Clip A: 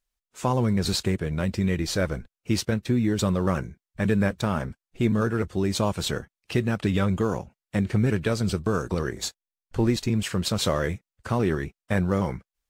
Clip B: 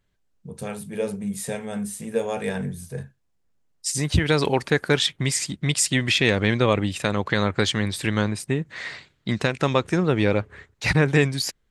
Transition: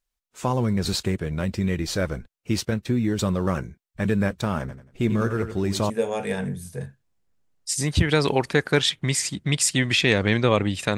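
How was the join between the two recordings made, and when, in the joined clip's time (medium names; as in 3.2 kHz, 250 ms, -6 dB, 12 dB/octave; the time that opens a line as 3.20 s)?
clip A
4.59–5.90 s: feedback delay 91 ms, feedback 32%, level -10 dB
5.90 s: go over to clip B from 2.07 s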